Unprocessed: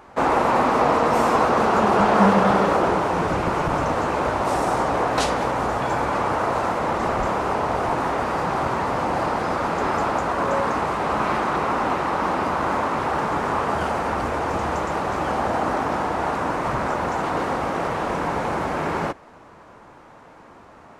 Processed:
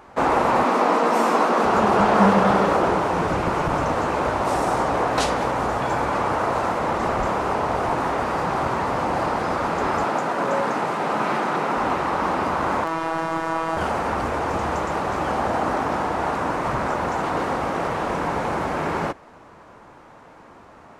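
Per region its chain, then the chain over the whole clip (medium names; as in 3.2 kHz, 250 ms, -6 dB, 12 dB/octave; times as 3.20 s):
0.64–1.65 s: Chebyshev high-pass 180 Hz, order 5 + doubling 17 ms -11.5 dB
10.04–11.77 s: high-pass 130 Hz 24 dB/octave + band-stop 1.1 kHz, Q 15
12.84–13.77 s: robot voice 163 Hz + doubling 34 ms -7 dB
whole clip: none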